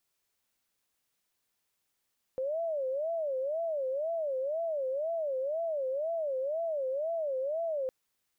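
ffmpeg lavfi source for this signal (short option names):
-f lavfi -i "aevalsrc='0.0335*sin(2*PI*(594.5*t-77.5/(2*PI*2)*sin(2*PI*2*t)))':d=5.51:s=44100"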